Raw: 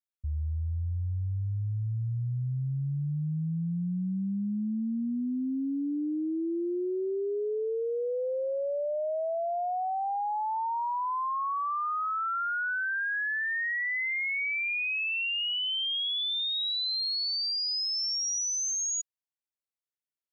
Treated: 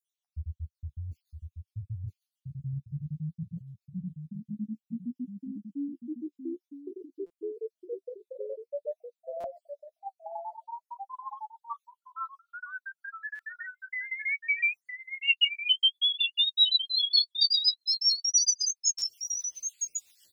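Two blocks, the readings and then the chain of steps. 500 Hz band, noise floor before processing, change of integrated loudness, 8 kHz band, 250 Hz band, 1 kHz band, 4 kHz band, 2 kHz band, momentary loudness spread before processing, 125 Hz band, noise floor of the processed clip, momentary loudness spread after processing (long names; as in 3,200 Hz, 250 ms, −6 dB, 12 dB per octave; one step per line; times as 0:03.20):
−8.5 dB, below −85 dBFS, +2.5 dB, can't be measured, −7.5 dB, −12.0 dB, +4.0 dB, −3.5 dB, 5 LU, −8.0 dB, below −85 dBFS, 21 LU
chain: time-frequency cells dropped at random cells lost 66%
reversed playback
upward compression, threshold −41 dBFS
reversed playback
high shelf with overshoot 2,100 Hz +11.5 dB, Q 1.5
on a send: single-tap delay 962 ms −6.5 dB
on the sum: flanger 0.54 Hz, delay 9.7 ms, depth 4.8 ms, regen +14%
dynamic equaliser 760 Hz, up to +4 dB, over −49 dBFS, Q 0.71
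rotating-speaker cabinet horn 7.5 Hz
buffer that repeats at 0:07.26/0:09.40/0:13.35/0:18.98, samples 256, times 6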